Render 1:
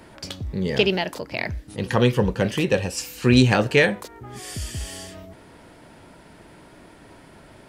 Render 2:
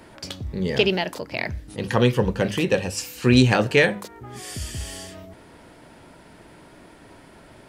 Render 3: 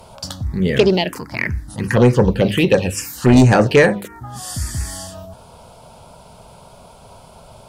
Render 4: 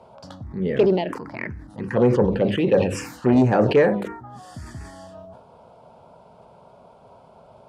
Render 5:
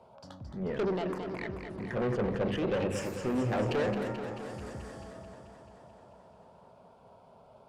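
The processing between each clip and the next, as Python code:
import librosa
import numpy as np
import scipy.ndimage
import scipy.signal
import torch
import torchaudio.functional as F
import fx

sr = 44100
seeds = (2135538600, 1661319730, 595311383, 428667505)

y1 = fx.hum_notches(x, sr, base_hz=50, count=4)
y2 = fx.env_phaser(y1, sr, low_hz=290.0, high_hz=3300.0, full_db=-14.5)
y2 = fx.fold_sine(y2, sr, drive_db=5, ceiling_db=-4.0)
y3 = fx.bandpass_q(y2, sr, hz=470.0, q=0.55)
y3 = fx.sustainer(y3, sr, db_per_s=70.0)
y3 = y3 * 10.0 ** (-4.0 / 20.0)
y4 = fx.tube_stage(y3, sr, drive_db=20.0, bias=0.4)
y4 = fx.echo_warbled(y4, sr, ms=218, feedback_pct=70, rate_hz=2.8, cents=66, wet_db=-8.0)
y4 = y4 * 10.0 ** (-7.0 / 20.0)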